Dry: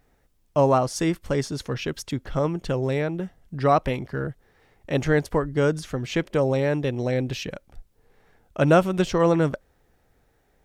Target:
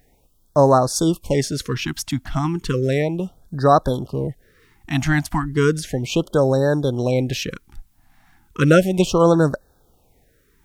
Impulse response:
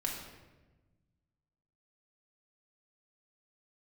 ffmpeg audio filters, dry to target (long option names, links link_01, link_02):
-af "highshelf=frequency=6900:gain=7.5,afftfilt=real='re*(1-between(b*sr/1024,430*pow(2600/430,0.5+0.5*sin(2*PI*0.34*pts/sr))/1.41,430*pow(2600/430,0.5+0.5*sin(2*PI*0.34*pts/sr))*1.41))':imag='im*(1-between(b*sr/1024,430*pow(2600/430,0.5+0.5*sin(2*PI*0.34*pts/sr))/1.41,430*pow(2600/430,0.5+0.5*sin(2*PI*0.34*pts/sr))*1.41))':win_size=1024:overlap=0.75,volume=5dB"